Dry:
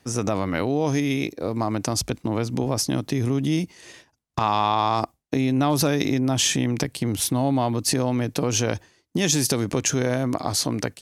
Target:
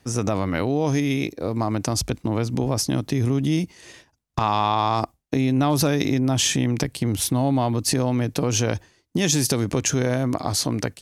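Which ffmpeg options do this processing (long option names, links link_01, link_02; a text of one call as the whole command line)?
ffmpeg -i in.wav -af "lowshelf=frequency=84:gain=8.5" out.wav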